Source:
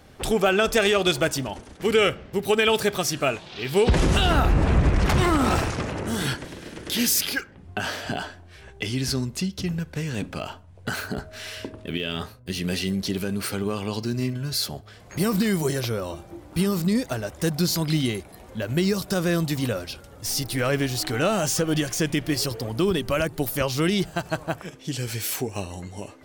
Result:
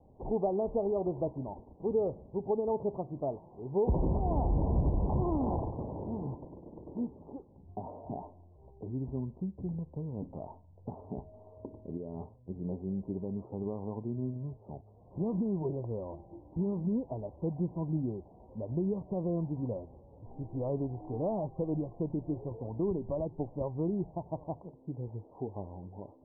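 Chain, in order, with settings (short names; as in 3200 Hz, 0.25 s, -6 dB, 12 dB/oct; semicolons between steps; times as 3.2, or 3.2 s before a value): steep low-pass 1000 Hz 96 dB/oct; gain -9 dB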